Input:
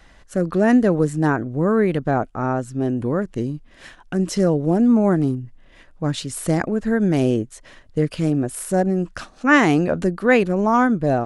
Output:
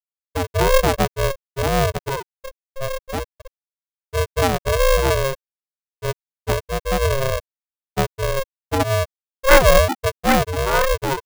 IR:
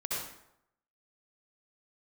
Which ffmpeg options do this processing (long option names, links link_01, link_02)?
-filter_complex "[0:a]acrusher=bits=3:mode=log:mix=0:aa=0.000001,asettb=1/sr,asplit=3[link_01][link_02][link_03];[link_01]atrim=end=8.804[link_04];[link_02]atrim=start=8.8:end=9.89,asetpts=PTS-STARTPTS,afade=type=in:duration=0.004:curve=qsin,afade=type=out:start_time=1.086:duration=0.004:curve=qsin,lowshelf=frequency=210:width_type=q:width=3:gain=-13.5[link_05];[link_03]atrim=start=9.886[link_06];[link_04][link_05]acrossfade=duration=0.004:curve1=hsin:curve2=qsin[link_07];[link_07][link_06]acrossfade=duration=0.004:curve1=qsin:curve2=hsin,afftfilt=real='re*gte(hypot(re,im),0.708)':imag='im*gte(hypot(re,im),0.708)':win_size=1024:overlap=0.75,aeval=exprs='val(0)*sgn(sin(2*PI*270*n/s))':channel_layout=same"